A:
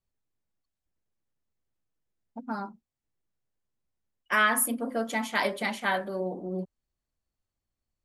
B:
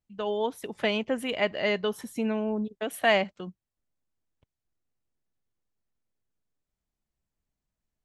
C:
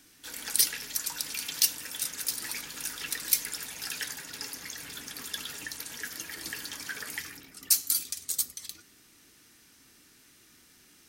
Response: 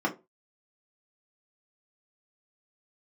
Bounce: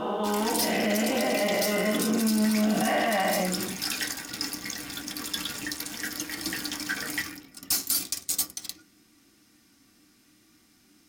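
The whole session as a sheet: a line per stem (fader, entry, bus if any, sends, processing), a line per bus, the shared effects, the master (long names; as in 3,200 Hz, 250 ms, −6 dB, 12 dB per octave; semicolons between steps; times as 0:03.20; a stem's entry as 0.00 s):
muted
−9.0 dB, 0.00 s, send −4 dB, every bin's largest magnitude spread in time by 480 ms
+0.5 dB, 0.00 s, send −9 dB, leveller curve on the samples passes 2; soft clipping −16.5 dBFS, distortion −10 dB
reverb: on, RT60 0.25 s, pre-delay 3 ms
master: brickwall limiter −17 dBFS, peak gain reduction 9.5 dB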